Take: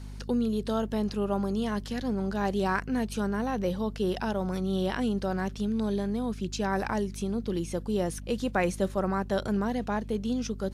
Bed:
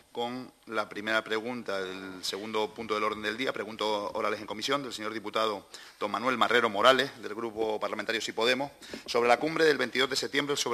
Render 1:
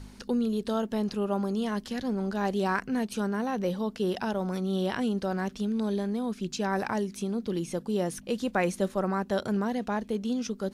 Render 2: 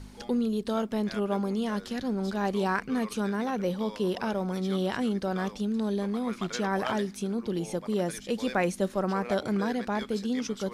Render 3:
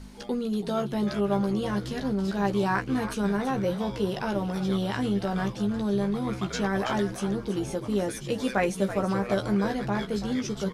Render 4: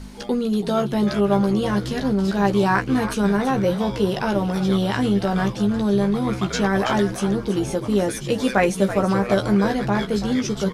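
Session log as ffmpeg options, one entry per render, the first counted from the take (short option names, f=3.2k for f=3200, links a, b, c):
-af "bandreject=f=50:t=h:w=4,bandreject=f=100:t=h:w=4,bandreject=f=150:t=h:w=4"
-filter_complex "[1:a]volume=-14.5dB[a];[0:a][a]amix=inputs=2:normalize=0"
-filter_complex "[0:a]asplit=2[a][b];[b]adelay=15,volume=-5.5dB[c];[a][c]amix=inputs=2:normalize=0,asplit=5[d][e][f][g][h];[e]adelay=330,afreqshift=-72,volume=-11dB[i];[f]adelay=660,afreqshift=-144,volume=-18.7dB[j];[g]adelay=990,afreqshift=-216,volume=-26.5dB[k];[h]adelay=1320,afreqshift=-288,volume=-34.2dB[l];[d][i][j][k][l]amix=inputs=5:normalize=0"
-af "volume=7dB"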